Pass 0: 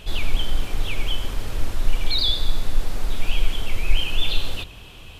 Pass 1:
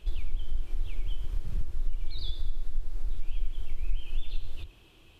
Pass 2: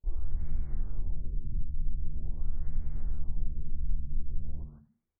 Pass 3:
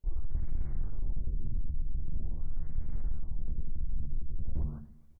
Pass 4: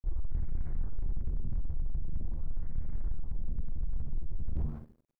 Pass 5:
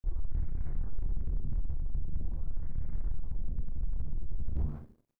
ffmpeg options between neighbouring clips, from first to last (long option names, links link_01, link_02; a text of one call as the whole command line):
ffmpeg -i in.wav -af "afwtdn=0.158,equalizer=frequency=340:width_type=o:width=0.35:gain=10,acompressor=threshold=-26dB:ratio=2.5,volume=1dB" out.wav
ffmpeg -i in.wav -filter_complex "[0:a]agate=range=-30dB:threshold=-48dB:ratio=16:detection=peak,asplit=4[link_01][link_02][link_03][link_04];[link_02]adelay=84,afreqshift=-78,volume=-17.5dB[link_05];[link_03]adelay=168,afreqshift=-156,volume=-25dB[link_06];[link_04]adelay=252,afreqshift=-234,volume=-32.6dB[link_07];[link_01][link_05][link_06][link_07]amix=inputs=4:normalize=0,afftfilt=real='re*lt(b*sr/1024,320*pow(2400/320,0.5+0.5*sin(2*PI*0.44*pts/sr)))':imag='im*lt(b*sr/1024,320*pow(2400/320,0.5+0.5*sin(2*PI*0.44*pts/sr)))':win_size=1024:overlap=0.75,volume=-1.5dB" out.wav
ffmpeg -i in.wav -af "areverse,acompressor=threshold=-32dB:ratio=12,areverse,volume=33.5dB,asoftclip=hard,volume=-33.5dB,aecho=1:1:275|550|825:0.0708|0.0304|0.0131,volume=10dB" out.wav
ffmpeg -i in.wav -filter_complex "[0:a]aeval=exprs='sgn(val(0))*max(abs(val(0))-0.00316,0)':channel_layout=same,asplit=2[link_01][link_02];[link_02]adelay=39,volume=-13.5dB[link_03];[link_01][link_03]amix=inputs=2:normalize=0,asoftclip=type=tanh:threshold=-25dB,volume=2.5dB" out.wav
ffmpeg -i in.wav -filter_complex "[0:a]asplit=2[link_01][link_02];[link_02]adelay=29,volume=-11.5dB[link_03];[link_01][link_03]amix=inputs=2:normalize=0" out.wav